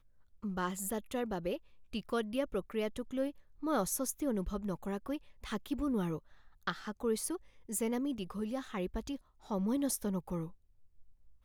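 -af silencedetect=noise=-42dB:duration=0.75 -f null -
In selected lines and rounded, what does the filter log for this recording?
silence_start: 10.48
silence_end: 11.44 | silence_duration: 0.96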